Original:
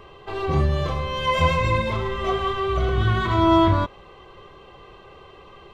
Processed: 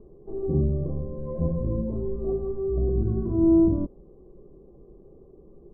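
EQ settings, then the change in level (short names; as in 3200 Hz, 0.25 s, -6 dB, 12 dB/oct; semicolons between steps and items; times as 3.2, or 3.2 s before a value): ladder low-pass 420 Hz, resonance 20%; air absorption 390 m; bell 95 Hz -14 dB 0.88 oct; +8.5 dB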